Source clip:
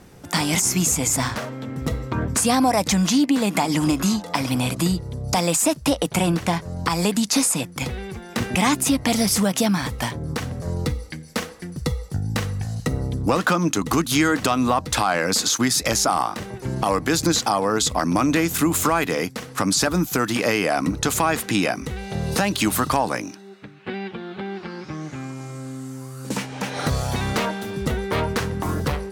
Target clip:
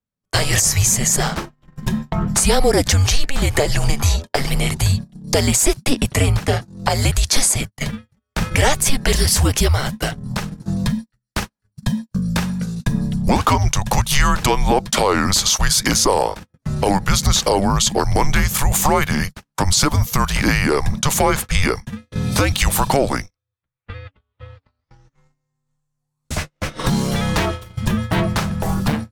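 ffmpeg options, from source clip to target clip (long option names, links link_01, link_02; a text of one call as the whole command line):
ffmpeg -i in.wav -af "agate=range=-46dB:threshold=-27dB:ratio=16:detection=peak,afreqshift=-280,volume=4.5dB" out.wav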